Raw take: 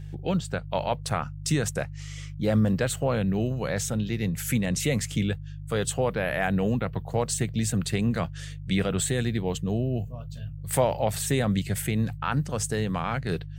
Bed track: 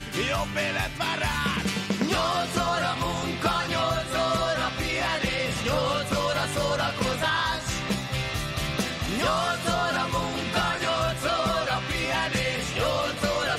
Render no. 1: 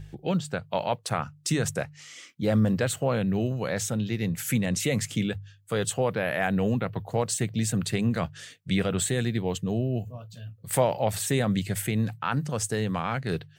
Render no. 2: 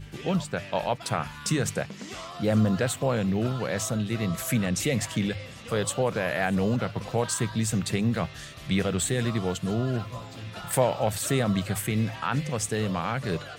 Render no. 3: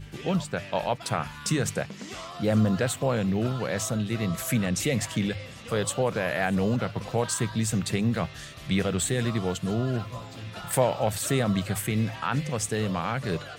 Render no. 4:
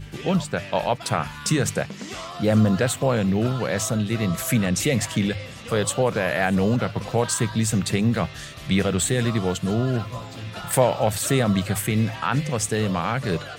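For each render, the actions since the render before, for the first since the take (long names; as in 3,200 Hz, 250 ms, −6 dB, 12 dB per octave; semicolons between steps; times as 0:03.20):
hum removal 50 Hz, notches 3
mix in bed track −15 dB
no processing that can be heard
level +4.5 dB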